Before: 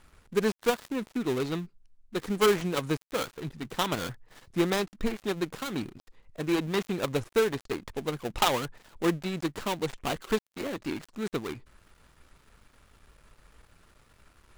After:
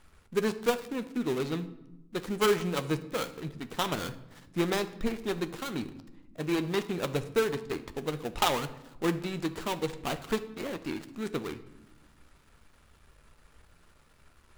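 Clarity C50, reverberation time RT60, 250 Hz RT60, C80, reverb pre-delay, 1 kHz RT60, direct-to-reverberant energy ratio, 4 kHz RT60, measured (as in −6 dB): 14.5 dB, 1.0 s, 1.9 s, 17.0 dB, 13 ms, 0.90 s, 10.0 dB, 0.65 s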